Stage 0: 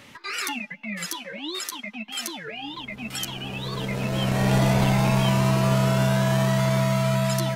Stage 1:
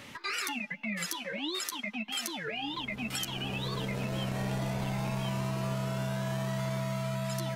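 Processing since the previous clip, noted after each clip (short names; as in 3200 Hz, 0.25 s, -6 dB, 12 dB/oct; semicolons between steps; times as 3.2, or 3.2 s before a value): compressor 6:1, threshold -31 dBFS, peak gain reduction 14 dB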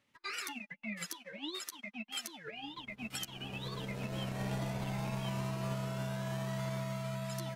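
upward expander 2.5:1, over -52 dBFS; gain -2.5 dB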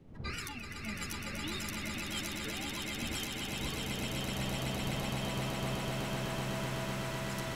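wind noise 200 Hz -49 dBFS; swelling echo 0.126 s, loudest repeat 8, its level -6 dB; gain -1.5 dB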